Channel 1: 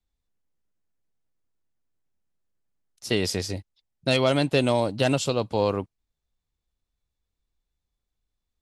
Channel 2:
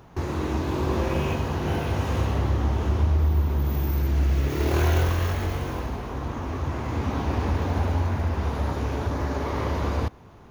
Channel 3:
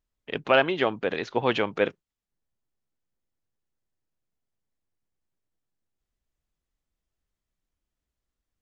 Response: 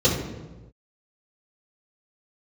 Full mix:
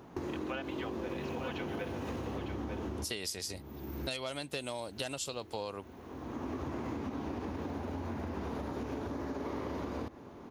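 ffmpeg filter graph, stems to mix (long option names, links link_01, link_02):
-filter_complex "[0:a]highshelf=frequency=6800:gain=12,volume=-4dB,asplit=2[link_01][link_02];[1:a]equalizer=frequency=270:width_type=o:width=1.9:gain=14,acompressor=threshold=-20dB:ratio=6,volume=-4.5dB,asplit=2[link_03][link_04];[link_04]volume=-21dB[link_05];[2:a]aecho=1:1:4:0.65,volume=-11.5dB,asplit=2[link_06][link_07];[link_07]volume=-8.5dB[link_08];[link_02]apad=whole_len=463427[link_09];[link_03][link_09]sidechaincompress=threshold=-43dB:ratio=10:attack=22:release=547[link_10];[link_05][link_08]amix=inputs=2:normalize=0,aecho=0:1:902:1[link_11];[link_01][link_10][link_06][link_11]amix=inputs=4:normalize=0,lowshelf=frequency=420:gain=-9.5,acompressor=threshold=-34dB:ratio=10"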